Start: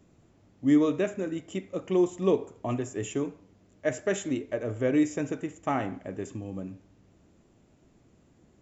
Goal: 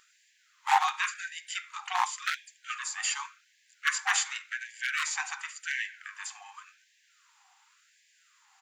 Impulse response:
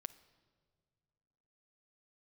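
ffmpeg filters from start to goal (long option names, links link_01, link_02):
-filter_complex "[0:a]asplit=4[link_01][link_02][link_03][link_04];[link_02]asetrate=29433,aresample=44100,atempo=1.49831,volume=-7dB[link_05];[link_03]asetrate=37084,aresample=44100,atempo=1.18921,volume=-17dB[link_06];[link_04]asetrate=55563,aresample=44100,atempo=0.793701,volume=-17dB[link_07];[link_01][link_05][link_06][link_07]amix=inputs=4:normalize=0,aeval=exprs='0.158*(abs(mod(val(0)/0.158+3,4)-2)-1)':channel_layout=same,asplit=2[link_08][link_09];[1:a]atrim=start_sample=2205,atrim=end_sample=3528[link_10];[link_09][link_10]afir=irnorm=-1:irlink=0,volume=11dB[link_11];[link_08][link_11]amix=inputs=2:normalize=0,afftfilt=real='re*gte(b*sr/1024,720*pow(1600/720,0.5+0.5*sin(2*PI*0.9*pts/sr)))':imag='im*gte(b*sr/1024,720*pow(1600/720,0.5+0.5*sin(2*PI*0.9*pts/sr)))':win_size=1024:overlap=0.75"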